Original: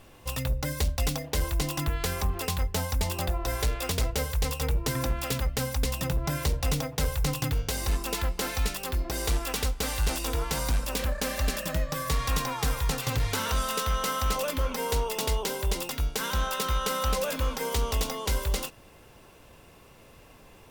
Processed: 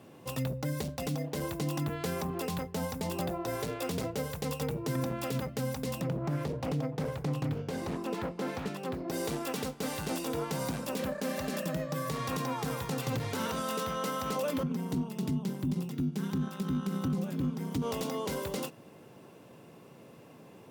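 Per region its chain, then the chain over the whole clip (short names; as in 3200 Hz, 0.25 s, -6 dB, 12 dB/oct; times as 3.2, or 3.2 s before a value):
6.01–9.08 high shelf 3800 Hz -11 dB + Doppler distortion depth 0.29 ms
14.63–17.82 resonant low shelf 270 Hz +12 dB, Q 3 + AM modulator 200 Hz, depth 55% + upward expander, over -30 dBFS
whole clip: HPF 140 Hz 24 dB/oct; tilt shelf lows +6.5 dB, about 680 Hz; limiter -24 dBFS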